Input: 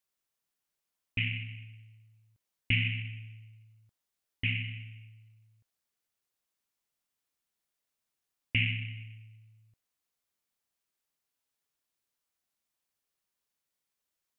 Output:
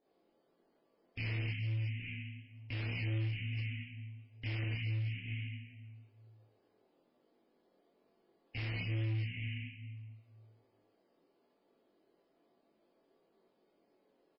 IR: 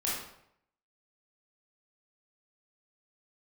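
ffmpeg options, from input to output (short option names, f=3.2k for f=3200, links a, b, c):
-filter_complex "[0:a]aecho=1:1:40|46|47|291|598|824:0.398|0.668|0.106|0.141|0.158|0.168,acrossover=split=260|520[a][b][c];[b]acompressor=mode=upward:threshold=-54dB:ratio=2.5[d];[a][d][c]amix=inputs=3:normalize=0[e];[1:a]atrim=start_sample=2205,asetrate=41454,aresample=44100[f];[e][f]afir=irnorm=-1:irlink=0,flanger=delay=19:depth=6.3:speed=1.1,highshelf=f=3.3k:g=-9.5,aresample=11025,volume=29.5dB,asoftclip=hard,volume=-29.5dB,aresample=44100,aemphasis=mode=production:type=cd,alimiter=level_in=8.5dB:limit=-24dB:level=0:latency=1:release=86,volume=-8.5dB,acrossover=split=3000[g][h];[h]acompressor=threshold=-56dB:ratio=4:attack=1:release=60[i];[g][i]amix=inputs=2:normalize=0,volume=1dB" -ar 16000 -c:a libmp3lame -b:a 16k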